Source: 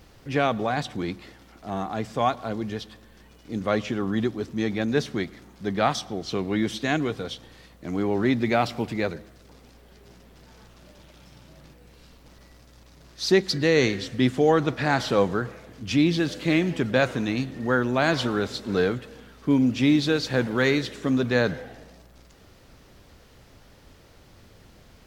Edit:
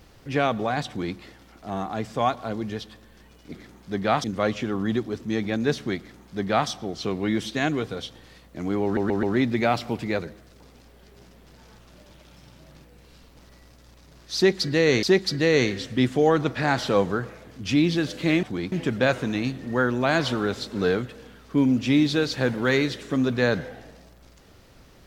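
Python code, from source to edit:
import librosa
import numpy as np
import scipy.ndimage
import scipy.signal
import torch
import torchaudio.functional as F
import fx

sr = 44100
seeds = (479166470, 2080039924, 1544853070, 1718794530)

y = fx.edit(x, sr, fx.duplicate(start_s=0.88, length_s=0.29, to_s=16.65),
    fx.duplicate(start_s=5.25, length_s=0.72, to_s=3.52),
    fx.stutter(start_s=8.12, slice_s=0.13, count=4),
    fx.repeat(start_s=13.25, length_s=0.67, count=2), tone=tone)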